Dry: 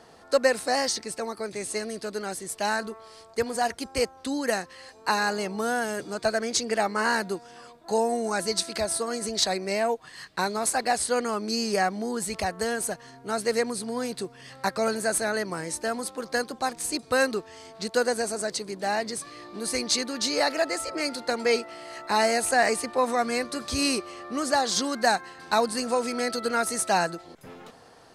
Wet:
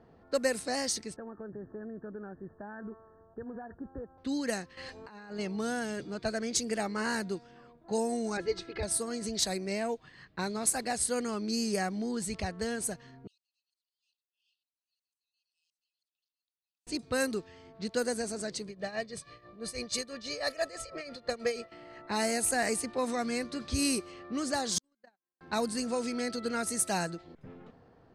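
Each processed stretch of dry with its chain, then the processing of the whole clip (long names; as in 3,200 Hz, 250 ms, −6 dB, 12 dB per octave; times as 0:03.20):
0:01.16–0:04.18: Chebyshev low-pass filter 1,800 Hz, order 10 + downward compressor 4 to 1, threshold −33 dBFS
0:04.77–0:05.39: high-shelf EQ 7,400 Hz +6.5 dB + compressor whose output falls as the input rises −37 dBFS
0:08.37–0:08.83: low-pass filter 2,500 Hz + comb filter 2.4 ms, depth 87%
0:13.27–0:16.87: downward compressor 10 to 1, threshold −35 dBFS + linear-phase brick-wall high-pass 2,500 Hz + volume swells 760 ms
0:18.67–0:21.72: comb filter 1.7 ms, depth 66% + amplitude tremolo 6.1 Hz, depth 77%
0:24.78–0:25.41: high-pass filter 220 Hz + downward compressor 5 to 1, threshold −34 dBFS + noise gate −33 dBFS, range −46 dB
whole clip: parametric band 920 Hz −12.5 dB 2.8 octaves; low-pass that shuts in the quiet parts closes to 1,200 Hz, open at −26 dBFS; dynamic equaliser 4,300 Hz, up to −6 dB, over −45 dBFS, Q 0.84; level +2 dB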